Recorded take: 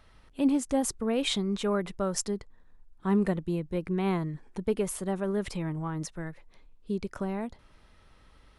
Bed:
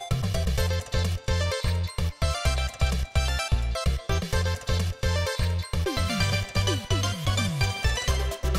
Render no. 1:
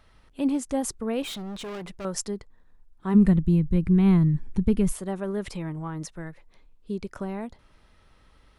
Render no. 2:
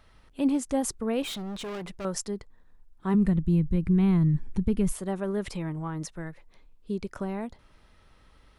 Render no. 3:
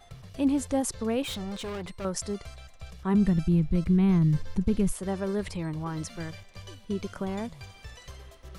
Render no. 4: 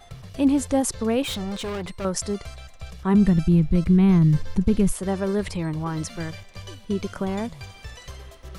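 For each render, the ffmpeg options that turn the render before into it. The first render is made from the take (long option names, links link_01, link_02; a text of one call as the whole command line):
ffmpeg -i in.wav -filter_complex "[0:a]asettb=1/sr,asplit=3[link_01][link_02][link_03];[link_01]atrim=end=1.224[link_04];[link_02]atrim=start=1.22:end=2.05,asetpts=PTS-STARTPTS,afade=type=in:duration=0.004:curve=qsin,afade=type=out:start_time=0.826:duration=0.004:curve=qsin,asoftclip=type=hard:threshold=-33.5dB[link_05];[link_03]atrim=start=2.046[link_06];[link_04][link_05]acrossfade=duration=0.004:curve1=hsin:curve2=qsin[link_07];[link_07][link_06]acrossfade=duration=0.004:curve1=qsin:curve2=hsin,asplit=3[link_08][link_09][link_10];[link_08]afade=type=out:start_time=3.14:duration=0.02[link_11];[link_09]asubboost=boost=10.5:cutoff=180,afade=type=in:start_time=3.14:duration=0.02,afade=type=out:start_time=4.92:duration=0.02[link_12];[link_10]afade=type=in:start_time=4.92:duration=0.02[link_13];[link_11][link_12][link_13]amix=inputs=3:normalize=0" out.wav
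ffmpeg -i in.wav -af "alimiter=limit=-16dB:level=0:latency=1:release=233" out.wav
ffmpeg -i in.wav -i bed.wav -filter_complex "[1:a]volume=-20dB[link_01];[0:a][link_01]amix=inputs=2:normalize=0" out.wav
ffmpeg -i in.wav -af "volume=5.5dB" out.wav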